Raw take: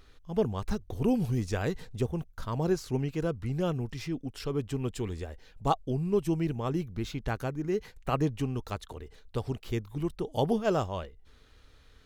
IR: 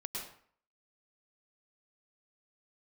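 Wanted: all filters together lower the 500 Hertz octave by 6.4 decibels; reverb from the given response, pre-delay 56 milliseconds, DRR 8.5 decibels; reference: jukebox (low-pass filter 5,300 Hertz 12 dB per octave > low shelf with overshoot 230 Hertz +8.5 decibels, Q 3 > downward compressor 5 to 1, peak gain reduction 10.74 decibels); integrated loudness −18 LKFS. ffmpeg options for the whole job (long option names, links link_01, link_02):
-filter_complex "[0:a]equalizer=frequency=500:width_type=o:gain=-4.5,asplit=2[link_01][link_02];[1:a]atrim=start_sample=2205,adelay=56[link_03];[link_02][link_03]afir=irnorm=-1:irlink=0,volume=-9dB[link_04];[link_01][link_04]amix=inputs=2:normalize=0,lowpass=5300,lowshelf=frequency=230:width_type=q:width=3:gain=8.5,acompressor=threshold=-24dB:ratio=5,volume=11dB"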